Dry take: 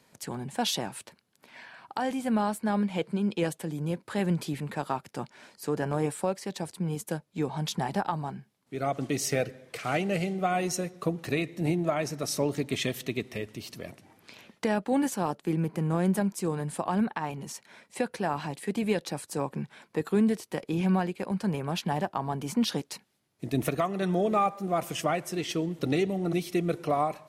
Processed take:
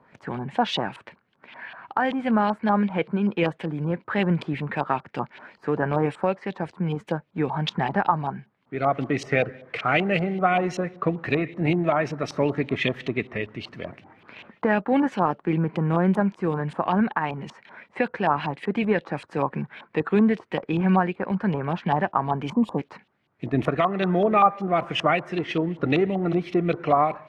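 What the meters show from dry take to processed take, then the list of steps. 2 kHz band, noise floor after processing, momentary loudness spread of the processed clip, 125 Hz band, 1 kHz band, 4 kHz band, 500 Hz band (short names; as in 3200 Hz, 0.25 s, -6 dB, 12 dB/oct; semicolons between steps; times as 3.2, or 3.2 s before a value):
+8.5 dB, -65 dBFS, 11 LU, +4.5 dB, +7.5 dB, +2.0 dB, +5.5 dB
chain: LFO low-pass saw up 5.2 Hz 960–3300 Hz; spectral gain 22.53–22.78, 1200–6700 Hz -24 dB; gain +4.5 dB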